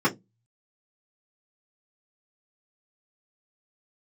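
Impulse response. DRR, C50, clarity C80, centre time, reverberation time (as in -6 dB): -10.0 dB, 19.5 dB, 27.5 dB, 12 ms, 0.15 s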